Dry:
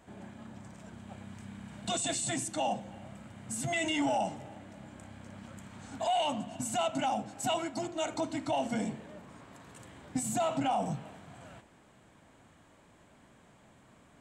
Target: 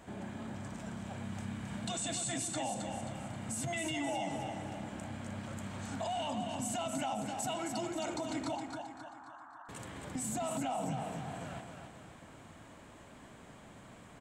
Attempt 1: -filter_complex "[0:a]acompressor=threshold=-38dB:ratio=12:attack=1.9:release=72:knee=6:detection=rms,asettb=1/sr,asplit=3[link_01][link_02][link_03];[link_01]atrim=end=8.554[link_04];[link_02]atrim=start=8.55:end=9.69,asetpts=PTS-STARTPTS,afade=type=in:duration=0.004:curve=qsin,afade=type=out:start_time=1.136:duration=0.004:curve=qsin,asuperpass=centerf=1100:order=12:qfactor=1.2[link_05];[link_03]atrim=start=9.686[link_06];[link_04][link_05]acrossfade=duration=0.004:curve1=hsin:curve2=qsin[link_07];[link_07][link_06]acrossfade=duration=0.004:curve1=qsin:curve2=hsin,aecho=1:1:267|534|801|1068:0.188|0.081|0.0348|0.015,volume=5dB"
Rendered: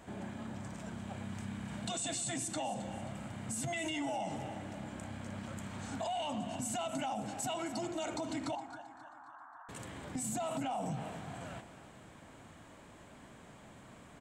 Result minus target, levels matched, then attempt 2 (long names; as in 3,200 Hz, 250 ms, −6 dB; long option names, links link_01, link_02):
echo-to-direct −8.5 dB
-filter_complex "[0:a]acompressor=threshold=-38dB:ratio=12:attack=1.9:release=72:knee=6:detection=rms,asettb=1/sr,asplit=3[link_01][link_02][link_03];[link_01]atrim=end=8.554[link_04];[link_02]atrim=start=8.55:end=9.69,asetpts=PTS-STARTPTS,afade=type=in:duration=0.004:curve=qsin,afade=type=out:start_time=1.136:duration=0.004:curve=qsin,asuperpass=centerf=1100:order=12:qfactor=1.2[link_05];[link_03]atrim=start=9.686[link_06];[link_04][link_05]acrossfade=duration=0.004:curve1=hsin:curve2=qsin[link_07];[link_07][link_06]acrossfade=duration=0.004:curve1=qsin:curve2=hsin,aecho=1:1:267|534|801|1068|1335:0.501|0.216|0.0927|0.0398|0.0171,volume=5dB"